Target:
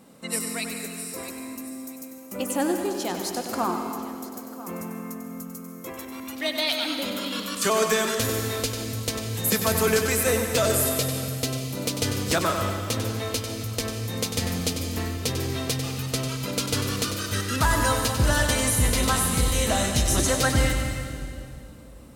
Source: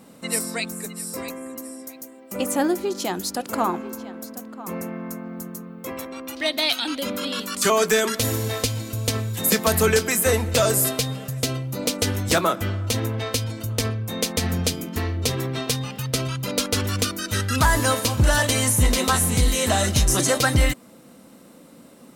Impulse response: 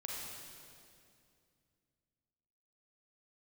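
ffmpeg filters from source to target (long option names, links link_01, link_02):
-filter_complex "[0:a]asplit=2[link_01][link_02];[1:a]atrim=start_sample=2205,adelay=96[link_03];[link_02][link_03]afir=irnorm=-1:irlink=0,volume=-3.5dB[link_04];[link_01][link_04]amix=inputs=2:normalize=0,volume=-4dB"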